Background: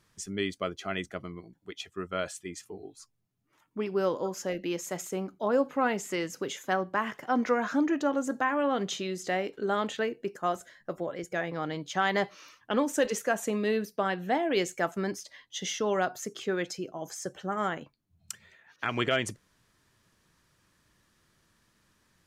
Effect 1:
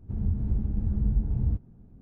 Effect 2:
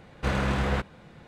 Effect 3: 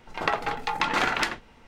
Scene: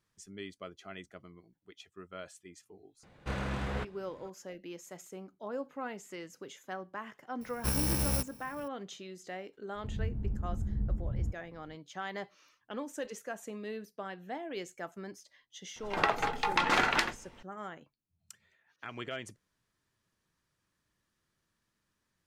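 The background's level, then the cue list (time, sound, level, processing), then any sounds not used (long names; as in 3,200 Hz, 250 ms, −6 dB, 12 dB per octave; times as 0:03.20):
background −12.5 dB
0:03.03: mix in 2 −9 dB
0:07.41: mix in 2 −4.5 dB + samples in bit-reversed order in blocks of 64 samples
0:09.75: mix in 1 −7.5 dB
0:15.76: mix in 3 −2.5 dB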